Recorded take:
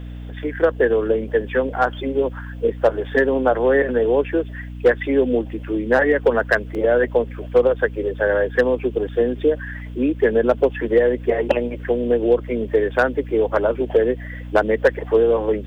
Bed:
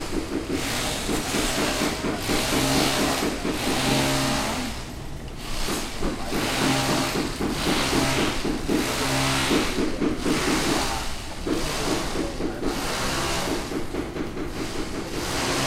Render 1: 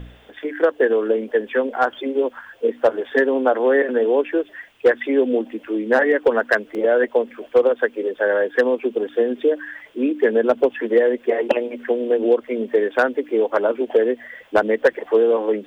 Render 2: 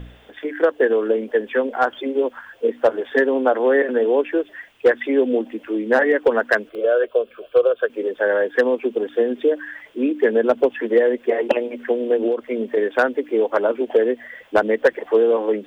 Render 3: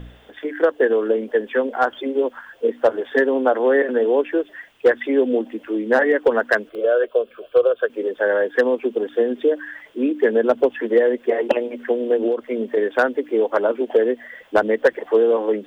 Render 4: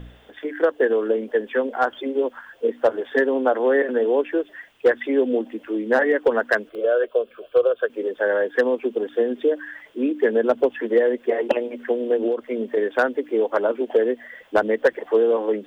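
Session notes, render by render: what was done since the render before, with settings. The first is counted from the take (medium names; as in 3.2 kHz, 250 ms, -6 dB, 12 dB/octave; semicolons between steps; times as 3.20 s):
de-hum 60 Hz, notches 5
6.69–7.90 s: static phaser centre 1.3 kHz, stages 8; 12.27–12.77 s: compression, threshold -16 dBFS
peaking EQ 2.4 kHz -3 dB 0.37 oct; hum notches 50/100 Hz
trim -2 dB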